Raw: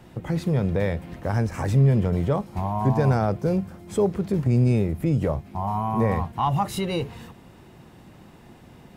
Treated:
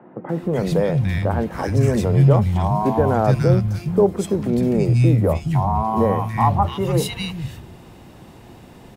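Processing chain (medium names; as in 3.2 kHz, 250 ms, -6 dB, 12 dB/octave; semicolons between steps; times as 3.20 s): three bands offset in time mids, highs, lows 290/420 ms, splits 180/1600 Hz; trim +6.5 dB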